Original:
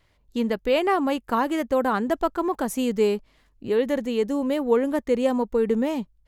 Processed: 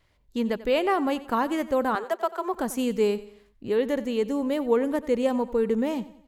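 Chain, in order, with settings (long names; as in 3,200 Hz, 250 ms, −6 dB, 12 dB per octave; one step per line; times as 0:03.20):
0:01.95–0:02.54: Butterworth high-pass 360 Hz 96 dB per octave
on a send: repeating echo 91 ms, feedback 43%, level −17 dB
on the sum: level −2 dB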